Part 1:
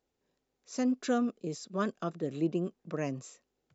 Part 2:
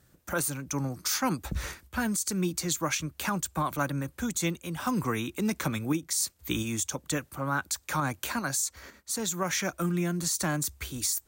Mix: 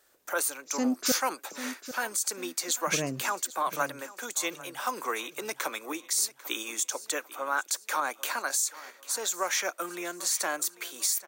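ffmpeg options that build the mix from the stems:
ffmpeg -i stem1.wav -i stem2.wav -filter_complex "[0:a]highshelf=frequency=5000:gain=9,volume=1.5dB,asplit=3[link_01][link_02][link_03];[link_01]atrim=end=1.12,asetpts=PTS-STARTPTS,afade=type=out:start_time=1.116:duration=0.004:curve=hsin[link_04];[link_02]atrim=start=1.12:end=2.87,asetpts=PTS-STARTPTS,volume=0[link_05];[link_03]atrim=start=2.87,asetpts=PTS-STARTPTS,afade=type=in:duration=0.004:curve=hsin[link_06];[link_04][link_05][link_06]concat=n=3:v=0:a=1,asplit=2[link_07][link_08];[link_08]volume=-12dB[link_09];[1:a]highpass=frequency=420:width=0.5412,highpass=frequency=420:width=1.3066,volume=1.5dB,asplit=2[link_10][link_11];[link_11]volume=-18.5dB[link_12];[link_09][link_12]amix=inputs=2:normalize=0,aecho=0:1:795|1590|2385|3180|3975:1|0.39|0.152|0.0593|0.0231[link_13];[link_07][link_10][link_13]amix=inputs=3:normalize=0" out.wav

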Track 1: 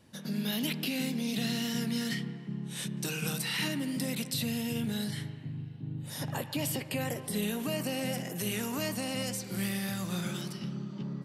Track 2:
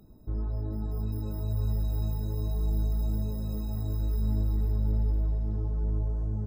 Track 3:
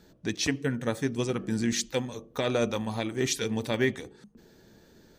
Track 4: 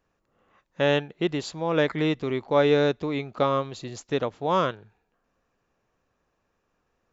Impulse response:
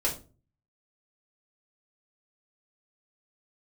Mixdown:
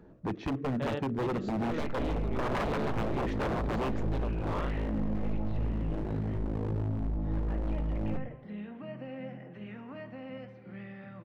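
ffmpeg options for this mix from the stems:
-filter_complex "[0:a]lowpass=frequency=2200:width=0.5412,lowpass=frequency=2200:width=1.3066,adelay=1150,volume=-12dB,asplit=2[link_01][link_02];[link_02]volume=-12dB[link_03];[1:a]lowpass=frequency=1500:width=0.5412,lowpass=frequency=1500:width=1.3066,acompressor=mode=upward:threshold=-28dB:ratio=2.5,aeval=exprs='max(val(0),0)':channel_layout=same,adelay=1700,volume=1dB,asplit=2[link_04][link_05];[link_05]volume=-9dB[link_06];[2:a]lowpass=1100,aemphasis=mode=reproduction:type=cd,alimiter=limit=-21.5dB:level=0:latency=1:release=69,volume=3dB[link_07];[3:a]lowpass=frequency=1700:poles=1,acompressor=mode=upward:threshold=-48dB:ratio=2.5,volume=-11.5dB[link_08];[4:a]atrim=start_sample=2205[link_09];[link_03][link_06]amix=inputs=2:normalize=0[link_10];[link_10][link_09]afir=irnorm=-1:irlink=0[link_11];[link_01][link_04][link_07][link_08][link_11]amix=inputs=5:normalize=0,aeval=exprs='0.0531*(abs(mod(val(0)/0.0531+3,4)-2)-1)':channel_layout=same"

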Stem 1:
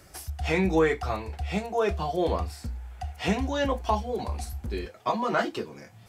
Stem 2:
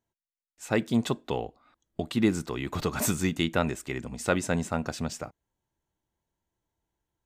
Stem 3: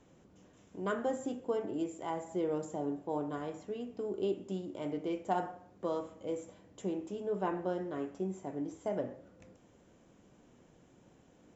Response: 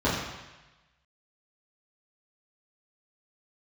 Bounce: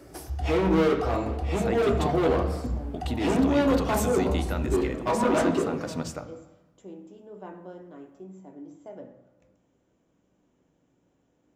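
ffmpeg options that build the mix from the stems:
-filter_complex "[0:a]equalizer=frequency=360:width_type=o:width=1.9:gain=12,acontrast=86,asoftclip=type=hard:threshold=-13.5dB,volume=-12dB,asplit=2[link_01][link_02];[link_02]volume=-16dB[link_03];[1:a]alimiter=limit=-20dB:level=0:latency=1:release=179,adelay=950,volume=-1.5dB,asplit=2[link_04][link_05];[link_05]volume=-22.5dB[link_06];[2:a]volume=-9.5dB,asplit=2[link_07][link_08];[link_08]volume=-22dB[link_09];[3:a]atrim=start_sample=2205[link_10];[link_03][link_06][link_09]amix=inputs=3:normalize=0[link_11];[link_11][link_10]afir=irnorm=-1:irlink=0[link_12];[link_01][link_04][link_07][link_12]amix=inputs=4:normalize=0"

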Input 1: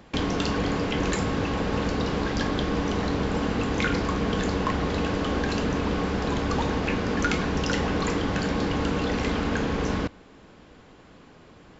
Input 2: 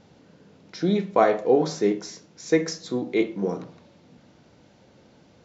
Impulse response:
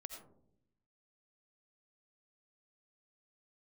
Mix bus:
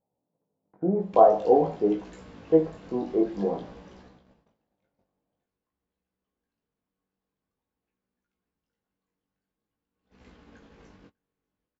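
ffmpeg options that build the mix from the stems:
-filter_complex "[0:a]acompressor=threshold=-34dB:ratio=6,adelay=1000,volume=1dB,afade=type=out:start_time=3.74:duration=0.55:silence=0.237137,afade=type=in:start_time=9.9:duration=0.3:silence=0.334965,asplit=2[link_01][link_02];[link_02]volume=-9.5dB[link_03];[1:a]lowpass=frequency=1000:width=0.5412,lowpass=frequency=1000:width=1.3066,equalizer=frequency=750:width_type=o:width=1.2:gain=8,volume=-1dB[link_04];[link_03]aecho=0:1:596|1192|1788|2384|2980:1|0.34|0.116|0.0393|0.0134[link_05];[link_01][link_04][link_05]amix=inputs=3:normalize=0,agate=range=-27dB:threshold=-47dB:ratio=16:detection=peak,flanger=delay=16:depth=5.2:speed=0.49"

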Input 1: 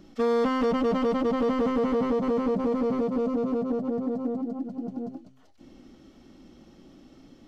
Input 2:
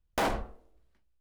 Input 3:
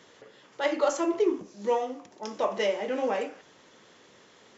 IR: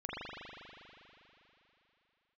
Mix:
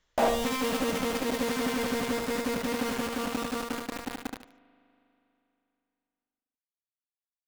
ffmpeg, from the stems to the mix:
-filter_complex "[0:a]acrusher=bits=3:mix=0:aa=0.000001,volume=-9dB,asplit=3[link_01][link_02][link_03];[link_02]volume=-22.5dB[link_04];[link_03]volume=-3.5dB[link_05];[1:a]equalizer=frequency=650:width_type=o:width=0.88:gain=12.5,volume=-5dB[link_06];[2:a]equalizer=frequency=350:width=0.64:gain=-9.5,volume=-17.5dB[link_07];[3:a]atrim=start_sample=2205[link_08];[link_04][link_08]afir=irnorm=-1:irlink=0[link_09];[link_05]aecho=0:1:74|148|222|296:1|0.22|0.0484|0.0106[link_10];[link_01][link_06][link_07][link_09][link_10]amix=inputs=5:normalize=0"

